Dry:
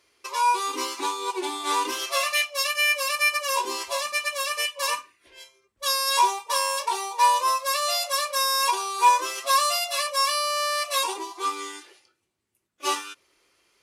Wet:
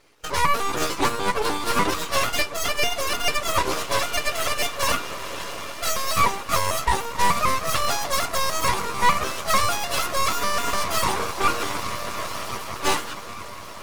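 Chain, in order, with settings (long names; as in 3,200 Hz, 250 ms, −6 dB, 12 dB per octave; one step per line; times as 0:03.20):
pitch shifter gated in a rhythm +3 semitones, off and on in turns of 149 ms
on a send: feedback delay with all-pass diffusion 1,558 ms, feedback 46%, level −12 dB
on the sum: feedback delay network reverb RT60 0.35 s, low-frequency decay 1.3×, high-frequency decay 0.7×, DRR 9.5 dB
half-wave rectification
harmonic and percussive parts rebalanced harmonic −8 dB
in parallel at +3 dB: speech leveller within 5 dB 0.5 s
on the sum: gain into a clipping stage and back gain 15 dB
high-shelf EQ 2,100 Hz −8.5 dB
level +7.5 dB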